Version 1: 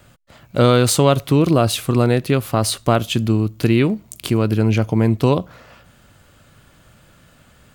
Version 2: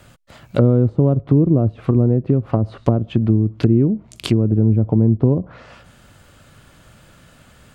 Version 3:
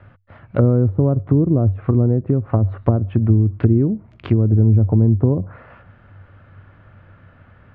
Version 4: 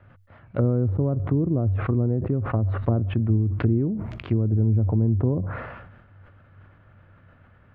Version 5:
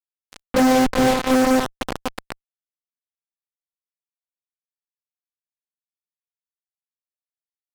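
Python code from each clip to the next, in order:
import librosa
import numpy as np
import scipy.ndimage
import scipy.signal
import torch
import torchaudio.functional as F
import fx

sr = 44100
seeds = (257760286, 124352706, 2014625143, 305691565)

y1 = fx.env_lowpass_down(x, sr, base_hz=340.0, full_db=-13.0)
y1 = y1 * 10.0 ** (2.5 / 20.0)
y2 = fx.ladder_lowpass(y1, sr, hz=2300.0, resonance_pct=25)
y2 = fx.peak_eq(y2, sr, hz=96.0, db=15.0, octaves=0.23)
y2 = y2 * 10.0 ** (4.0 / 20.0)
y3 = fx.sustainer(y2, sr, db_per_s=43.0)
y3 = y3 * 10.0 ** (-7.5 / 20.0)
y4 = fx.robotise(y3, sr, hz=258.0)
y4 = fx.echo_swell(y4, sr, ms=122, loudest=8, wet_db=-7.0)
y4 = fx.fuzz(y4, sr, gain_db=49.0, gate_db=-40.0)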